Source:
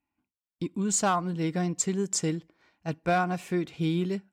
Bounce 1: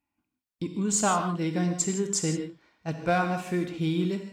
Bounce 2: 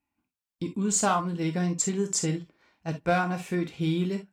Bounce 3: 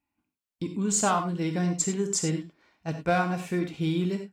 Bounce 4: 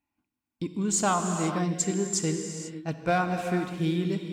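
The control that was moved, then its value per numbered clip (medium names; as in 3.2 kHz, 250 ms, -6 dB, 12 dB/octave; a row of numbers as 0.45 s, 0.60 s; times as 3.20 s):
gated-style reverb, gate: 190 ms, 80 ms, 120 ms, 520 ms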